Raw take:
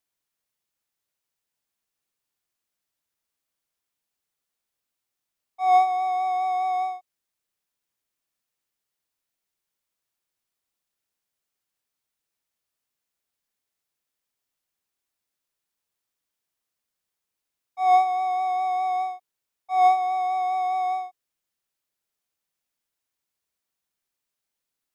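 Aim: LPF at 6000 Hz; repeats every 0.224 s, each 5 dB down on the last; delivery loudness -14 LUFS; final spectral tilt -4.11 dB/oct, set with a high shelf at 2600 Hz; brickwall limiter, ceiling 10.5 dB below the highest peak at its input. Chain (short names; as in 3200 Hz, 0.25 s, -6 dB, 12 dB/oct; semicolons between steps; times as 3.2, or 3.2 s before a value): LPF 6000 Hz; high shelf 2600 Hz -8 dB; limiter -21.5 dBFS; feedback echo 0.224 s, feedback 56%, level -5 dB; gain +12.5 dB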